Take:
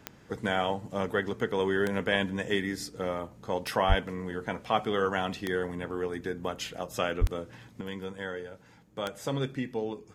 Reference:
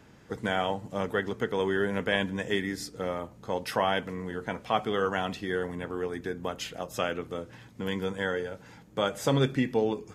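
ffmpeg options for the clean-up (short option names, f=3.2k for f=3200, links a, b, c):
-filter_complex "[0:a]adeclick=t=4,asplit=3[a][b][c];[a]afade=t=out:st=3.88:d=0.02[d];[b]highpass=f=140:w=0.5412,highpass=f=140:w=1.3066,afade=t=in:st=3.88:d=0.02,afade=t=out:st=4:d=0.02[e];[c]afade=t=in:st=4:d=0.02[f];[d][e][f]amix=inputs=3:normalize=0,asplit=3[g][h][i];[g]afade=t=out:st=7.2:d=0.02[j];[h]highpass=f=140:w=0.5412,highpass=f=140:w=1.3066,afade=t=in:st=7.2:d=0.02,afade=t=out:st=7.32:d=0.02[k];[i]afade=t=in:st=7.32:d=0.02[l];[j][k][l]amix=inputs=3:normalize=0,asetnsamples=n=441:p=0,asendcmd='7.81 volume volume 6.5dB',volume=0dB"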